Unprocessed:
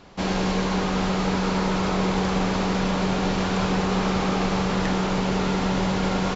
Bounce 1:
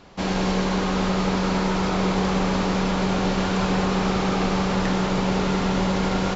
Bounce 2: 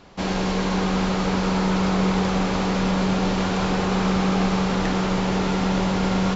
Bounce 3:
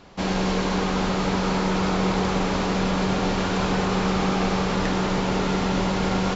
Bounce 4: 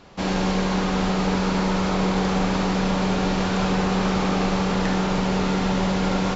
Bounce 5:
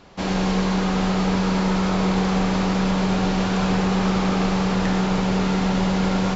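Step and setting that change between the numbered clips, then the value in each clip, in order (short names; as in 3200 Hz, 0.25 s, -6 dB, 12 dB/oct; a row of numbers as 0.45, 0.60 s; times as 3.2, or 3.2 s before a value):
non-linear reverb, gate: 220, 500, 330, 90, 140 ms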